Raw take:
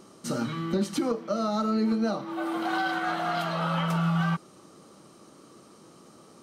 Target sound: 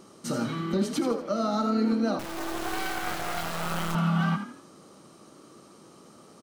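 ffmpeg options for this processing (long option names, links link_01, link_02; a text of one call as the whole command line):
ffmpeg -i in.wav -filter_complex "[0:a]asplit=5[link_01][link_02][link_03][link_04][link_05];[link_02]adelay=81,afreqshift=36,volume=-9.5dB[link_06];[link_03]adelay=162,afreqshift=72,volume=-17.9dB[link_07];[link_04]adelay=243,afreqshift=108,volume=-26.3dB[link_08];[link_05]adelay=324,afreqshift=144,volume=-34.7dB[link_09];[link_01][link_06][link_07][link_08][link_09]amix=inputs=5:normalize=0,asettb=1/sr,asplit=3[link_10][link_11][link_12];[link_10]atrim=end=2.194[link_13];[link_11]atrim=start=2.19:end=3.95,asetpts=PTS-STARTPTS,afade=type=in:duration=0.004:curve=qsin,afade=type=out:start_time=1.756:duration=0.004:curve=qsin,acrusher=bits=3:dc=4:mix=0:aa=0.000001[link_14];[link_12]atrim=start=3.946[link_15];[link_13][link_14]acrossfade=duration=0.004:curve1=hsin:curve2=qsin[link_16];[link_16][link_15]acrossfade=duration=0.004:curve1=qsin:curve2=hsin" out.wav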